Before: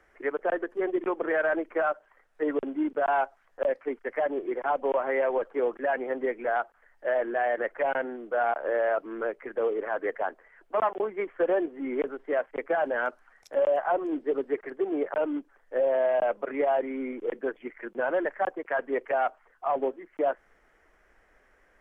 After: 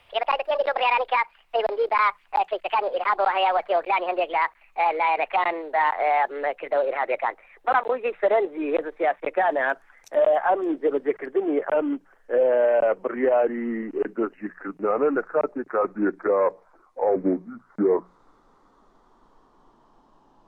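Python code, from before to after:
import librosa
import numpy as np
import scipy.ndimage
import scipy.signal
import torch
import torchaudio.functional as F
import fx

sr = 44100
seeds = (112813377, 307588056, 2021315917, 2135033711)

y = fx.speed_glide(x, sr, from_pct=160, to_pct=53)
y = fx.hum_notches(y, sr, base_hz=60, count=3)
y = F.gain(torch.from_numpy(y), 5.0).numpy()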